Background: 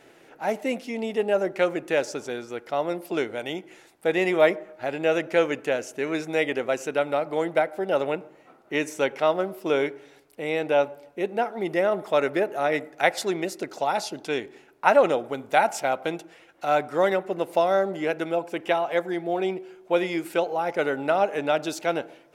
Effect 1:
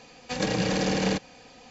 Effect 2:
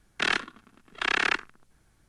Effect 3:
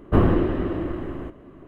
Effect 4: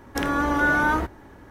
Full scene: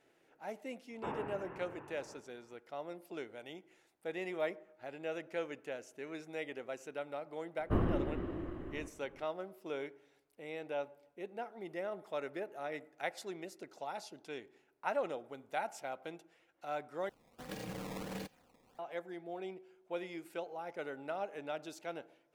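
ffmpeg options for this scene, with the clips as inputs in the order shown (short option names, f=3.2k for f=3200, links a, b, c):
-filter_complex "[3:a]asplit=2[a][b];[0:a]volume=-17.5dB[c];[a]highpass=f=570:t=q:w=0.5412,highpass=f=570:t=q:w=1.307,lowpass=f=3k:t=q:w=0.5176,lowpass=f=3k:t=q:w=0.7071,lowpass=f=3k:t=q:w=1.932,afreqshift=-220[d];[1:a]acrusher=samples=17:mix=1:aa=0.000001:lfo=1:lforange=27.2:lforate=1.5[e];[c]asplit=2[f][g];[f]atrim=end=17.094[h];[e]atrim=end=1.7,asetpts=PTS-STARTPTS,volume=-17.5dB[i];[g]atrim=start=18.786[j];[d]atrim=end=1.67,asetpts=PTS-STARTPTS,volume=-12.5dB,afade=t=in:d=0.004:c=hsin,afade=t=out:st=1.666:d=0.004:c=hsin,adelay=900[k];[b]atrim=end=1.67,asetpts=PTS-STARTPTS,volume=-14dB,afade=t=in:d=0.004:c=hsin,afade=t=out:st=1.666:d=0.004:c=hsin,adelay=7580[l];[h][i]acrossfade=d=0.004:c1=hsin:c2=hsin[m];[m][j]acrossfade=d=0.004:c1=hsin:c2=hsin[n];[n][k][l]amix=inputs=3:normalize=0"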